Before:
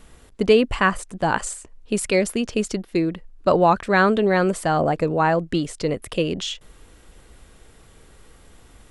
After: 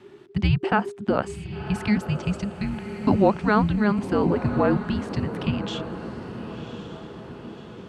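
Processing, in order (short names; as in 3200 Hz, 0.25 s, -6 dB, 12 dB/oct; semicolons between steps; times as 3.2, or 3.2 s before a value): dynamic EQ 2300 Hz, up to -5 dB, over -36 dBFS, Q 0.78; frequency shift -370 Hz; wide varispeed 1.13×; BPF 110–3500 Hz; on a send: diffused feedback echo 1.09 s, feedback 53%, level -11 dB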